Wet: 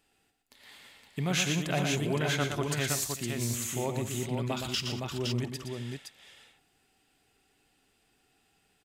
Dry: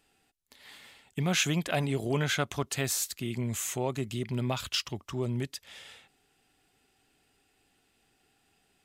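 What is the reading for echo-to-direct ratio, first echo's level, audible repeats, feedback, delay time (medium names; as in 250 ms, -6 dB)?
-2.0 dB, -17.0 dB, 5, no regular repeats, 50 ms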